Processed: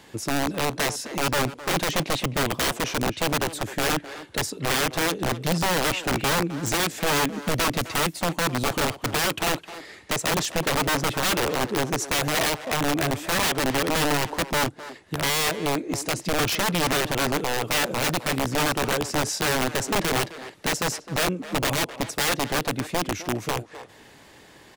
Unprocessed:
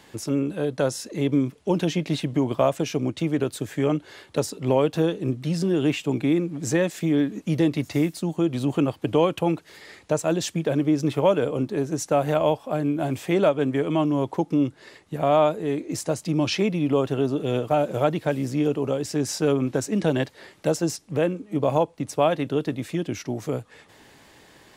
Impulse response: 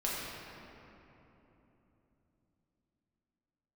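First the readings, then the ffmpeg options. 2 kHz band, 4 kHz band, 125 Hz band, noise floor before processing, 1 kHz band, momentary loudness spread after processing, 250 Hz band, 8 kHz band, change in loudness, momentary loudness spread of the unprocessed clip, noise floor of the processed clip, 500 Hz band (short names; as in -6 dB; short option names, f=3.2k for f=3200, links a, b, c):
+10.5 dB, +10.0 dB, -3.5 dB, -53 dBFS, +3.5 dB, 5 LU, -5.5 dB, +8.5 dB, 0.0 dB, 7 LU, -50 dBFS, -4.5 dB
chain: -filter_complex "[0:a]aeval=exprs='(mod(8.91*val(0)+1,2)-1)/8.91':c=same,asplit=2[a][b];[b]adelay=260,highpass=300,lowpass=3.4k,asoftclip=type=hard:threshold=-27.5dB,volume=-10dB[c];[a][c]amix=inputs=2:normalize=0,volume=1.5dB"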